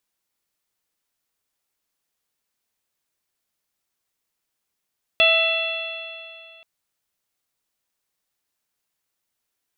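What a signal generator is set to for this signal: stretched partials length 1.43 s, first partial 654 Hz, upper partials -8/-10/5/1.5/-16.5 dB, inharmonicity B 0.0032, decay 2.49 s, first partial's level -19 dB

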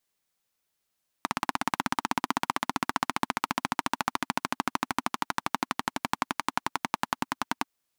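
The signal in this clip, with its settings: single-cylinder engine model, changing speed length 6.41 s, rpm 2000, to 1200, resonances 260/930 Hz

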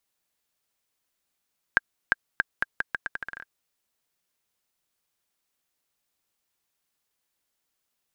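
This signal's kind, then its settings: bouncing ball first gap 0.35 s, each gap 0.8, 1600 Hz, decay 24 ms -4.5 dBFS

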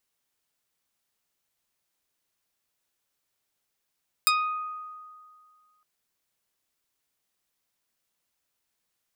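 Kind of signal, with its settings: plucked string D#6, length 1.56 s, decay 2.05 s, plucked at 0.38, medium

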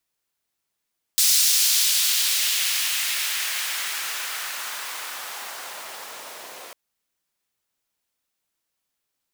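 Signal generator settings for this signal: swept filtered noise pink, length 5.55 s highpass, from 5200 Hz, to 530 Hz, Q 1.1, exponential, gain ramp -27 dB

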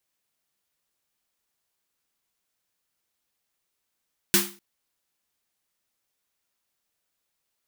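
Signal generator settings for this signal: snare drum length 0.25 s, tones 200 Hz, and 350 Hz, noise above 930 Hz, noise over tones 7.5 dB, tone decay 0.37 s, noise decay 0.33 s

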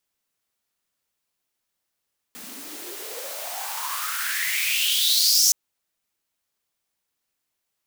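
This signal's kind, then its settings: swept filtered noise white, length 3.17 s highpass, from 200 Hz, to 6000 Hz, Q 6.5, exponential, gain ramp +18.5 dB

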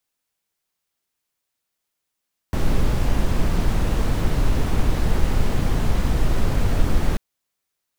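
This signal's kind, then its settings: noise brown, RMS -17 dBFS 4.64 s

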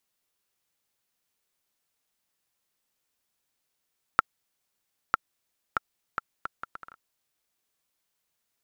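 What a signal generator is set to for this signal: bouncing ball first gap 0.95 s, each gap 0.66, 1350 Hz, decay 19 ms -3.5 dBFS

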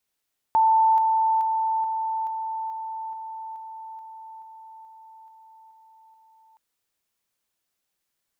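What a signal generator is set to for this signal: level ladder 888 Hz -15 dBFS, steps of -3 dB, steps 14, 0.43 s 0.00 s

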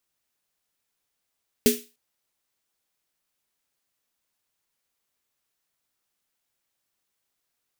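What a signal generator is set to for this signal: snare drum length 0.30 s, tones 240 Hz, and 420 Hz, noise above 2000 Hz, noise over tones -4.5 dB, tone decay 0.25 s, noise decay 0.32 s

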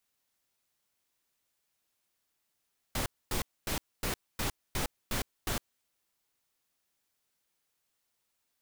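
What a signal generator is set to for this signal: noise bursts pink, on 0.11 s, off 0.25 s, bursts 8, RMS -32 dBFS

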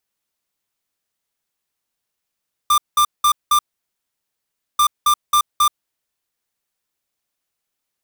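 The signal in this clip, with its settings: beep pattern square 1190 Hz, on 0.08 s, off 0.19 s, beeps 4, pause 1.20 s, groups 2, -13.5 dBFS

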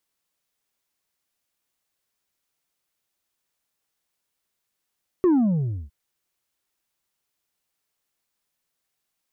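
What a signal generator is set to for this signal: sub drop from 380 Hz, over 0.66 s, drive 3.5 dB, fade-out 0.63 s, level -15 dB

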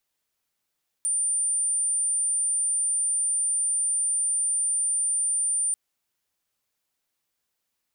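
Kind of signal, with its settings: tone sine 9170 Hz -22 dBFS 4.69 s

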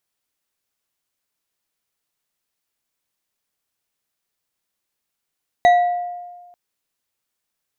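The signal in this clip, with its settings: glass hit bar, lowest mode 708 Hz, decay 1.41 s, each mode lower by 10 dB, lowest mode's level -7.5 dB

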